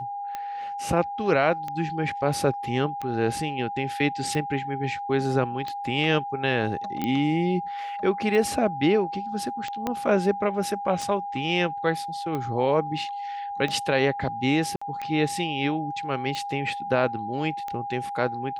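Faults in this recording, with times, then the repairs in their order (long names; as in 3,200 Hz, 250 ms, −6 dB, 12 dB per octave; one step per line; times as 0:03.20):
scratch tick 45 rpm −18 dBFS
whistle 810 Hz −30 dBFS
0:07.04: click −15 dBFS
0:09.87: click −13 dBFS
0:14.76–0:14.81: drop-out 55 ms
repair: click removal
notch filter 810 Hz, Q 30
repair the gap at 0:14.76, 55 ms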